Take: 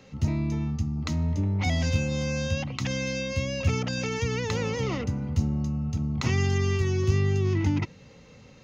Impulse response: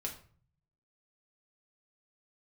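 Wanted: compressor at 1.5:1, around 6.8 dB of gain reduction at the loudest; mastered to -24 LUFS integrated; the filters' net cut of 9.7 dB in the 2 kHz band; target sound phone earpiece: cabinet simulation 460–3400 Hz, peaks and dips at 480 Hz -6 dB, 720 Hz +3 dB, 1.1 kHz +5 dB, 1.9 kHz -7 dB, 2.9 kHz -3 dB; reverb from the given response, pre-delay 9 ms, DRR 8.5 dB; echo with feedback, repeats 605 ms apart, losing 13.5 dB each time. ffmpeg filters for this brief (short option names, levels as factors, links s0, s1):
-filter_complex "[0:a]equalizer=f=2000:t=o:g=-8,acompressor=threshold=0.0126:ratio=1.5,aecho=1:1:605|1210:0.211|0.0444,asplit=2[s0][s1];[1:a]atrim=start_sample=2205,adelay=9[s2];[s1][s2]afir=irnorm=-1:irlink=0,volume=0.376[s3];[s0][s3]amix=inputs=2:normalize=0,highpass=460,equalizer=f=480:t=q:w=4:g=-6,equalizer=f=720:t=q:w=4:g=3,equalizer=f=1100:t=q:w=4:g=5,equalizer=f=1900:t=q:w=4:g=-7,equalizer=f=2900:t=q:w=4:g=-3,lowpass=f=3400:w=0.5412,lowpass=f=3400:w=1.3066,volume=8.91"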